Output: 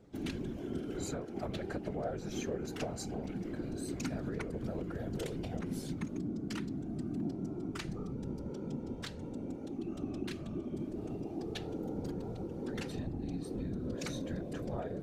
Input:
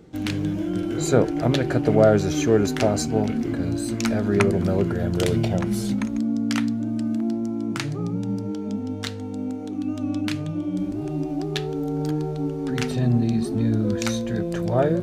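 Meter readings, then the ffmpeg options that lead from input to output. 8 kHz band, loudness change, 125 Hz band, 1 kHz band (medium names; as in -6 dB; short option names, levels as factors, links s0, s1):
-14.5 dB, -16.0 dB, -16.5 dB, -16.5 dB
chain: -af "acompressor=threshold=0.0708:ratio=6,afftfilt=real='hypot(re,im)*cos(2*PI*random(0))':imag='hypot(re,im)*sin(2*PI*random(1))':win_size=512:overlap=0.75,volume=0.531"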